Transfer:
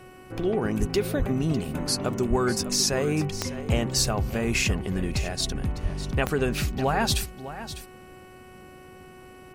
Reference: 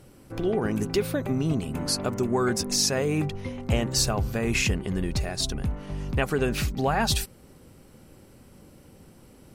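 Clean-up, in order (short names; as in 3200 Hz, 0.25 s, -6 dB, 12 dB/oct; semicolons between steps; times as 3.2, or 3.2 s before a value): de-click; de-hum 370 Hz, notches 8; de-plosive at 0.79/1.18/2.29/5.82; inverse comb 0.602 s -13 dB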